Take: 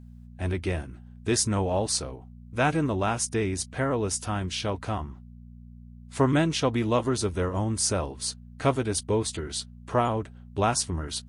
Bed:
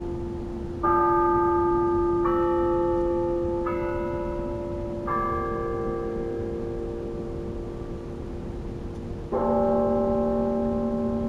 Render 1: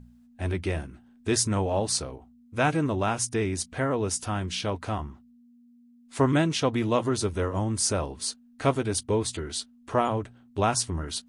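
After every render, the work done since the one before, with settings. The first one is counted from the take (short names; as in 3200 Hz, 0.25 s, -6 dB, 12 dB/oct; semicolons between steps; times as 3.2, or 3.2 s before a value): de-hum 60 Hz, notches 3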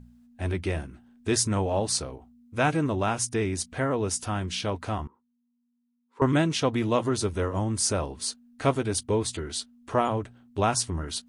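5.07–6.22 double band-pass 670 Hz, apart 1 oct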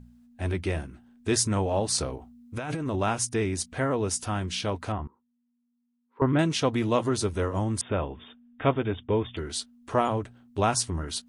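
1.98–2.96 negative-ratio compressor -30 dBFS; 4.92–6.39 air absorption 460 m; 7.81–9.37 brick-wall FIR low-pass 3700 Hz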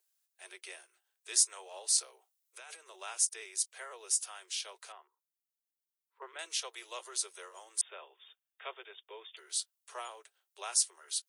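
steep high-pass 360 Hz 96 dB/oct; differentiator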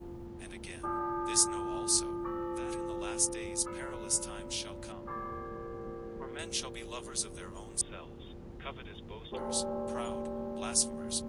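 add bed -14 dB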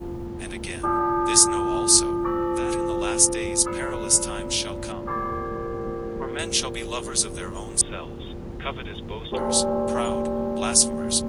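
gain +12 dB; limiter -2 dBFS, peak gain reduction 3 dB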